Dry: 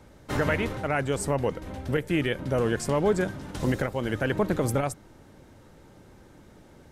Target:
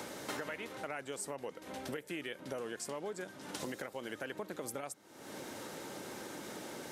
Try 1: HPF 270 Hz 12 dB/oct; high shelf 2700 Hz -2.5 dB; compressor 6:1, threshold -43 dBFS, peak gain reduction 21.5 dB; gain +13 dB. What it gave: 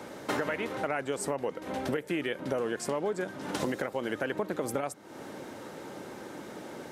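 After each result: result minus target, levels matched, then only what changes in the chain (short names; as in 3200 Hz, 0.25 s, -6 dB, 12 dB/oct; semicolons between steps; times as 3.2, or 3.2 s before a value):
compressor: peak gain reduction -10.5 dB; 4000 Hz band -5.0 dB
change: compressor 6:1, threshold -55 dBFS, peak gain reduction 31.5 dB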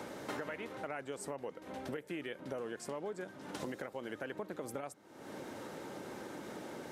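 4000 Hz band -4.5 dB
change: high shelf 2700 Hz +7.5 dB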